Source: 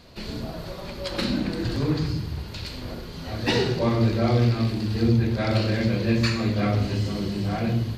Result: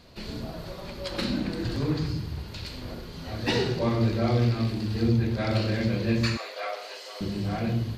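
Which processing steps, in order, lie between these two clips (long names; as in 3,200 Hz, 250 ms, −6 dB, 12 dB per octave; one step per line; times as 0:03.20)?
0:06.37–0:07.21: Butterworth high-pass 510 Hz 36 dB per octave
level −3 dB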